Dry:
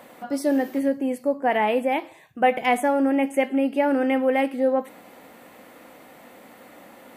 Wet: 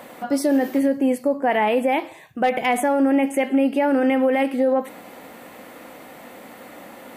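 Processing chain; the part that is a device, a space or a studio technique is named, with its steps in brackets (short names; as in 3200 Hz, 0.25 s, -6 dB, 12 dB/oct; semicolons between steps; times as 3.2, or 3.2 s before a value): clipper into limiter (hard clip -10.5 dBFS, distortion -32 dB; limiter -17.5 dBFS, peak gain reduction 7 dB); gain +6 dB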